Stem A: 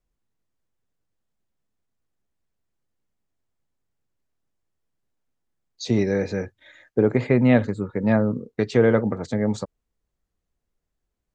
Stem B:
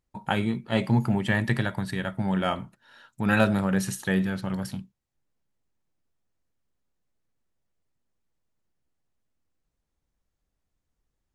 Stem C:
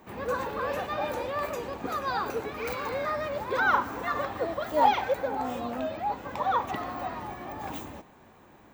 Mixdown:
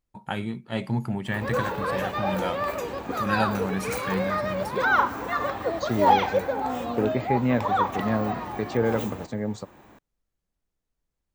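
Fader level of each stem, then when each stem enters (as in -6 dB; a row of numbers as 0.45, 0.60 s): -6.5, -4.5, +3.0 dB; 0.00, 0.00, 1.25 s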